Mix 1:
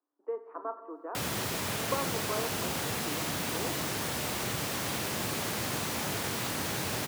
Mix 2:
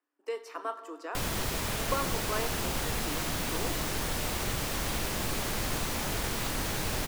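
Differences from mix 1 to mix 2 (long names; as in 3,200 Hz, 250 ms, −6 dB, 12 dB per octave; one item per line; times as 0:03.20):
speech: remove low-pass filter 1,200 Hz 24 dB per octave
master: remove high-pass filter 94 Hz 24 dB per octave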